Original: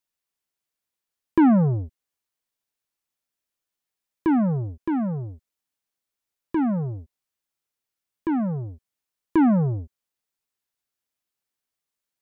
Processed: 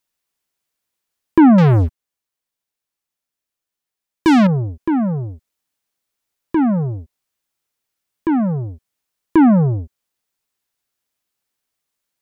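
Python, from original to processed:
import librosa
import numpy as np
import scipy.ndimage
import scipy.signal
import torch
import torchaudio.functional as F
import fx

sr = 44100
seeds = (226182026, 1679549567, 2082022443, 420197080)

y = fx.leveller(x, sr, passes=3, at=(1.58, 4.47))
y = F.gain(torch.from_numpy(y), 7.0).numpy()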